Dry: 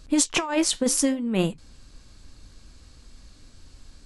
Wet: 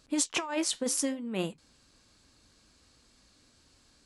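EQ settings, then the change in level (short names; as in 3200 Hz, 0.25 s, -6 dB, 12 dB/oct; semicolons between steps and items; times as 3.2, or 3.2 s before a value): HPF 250 Hz 6 dB/oct; -6.5 dB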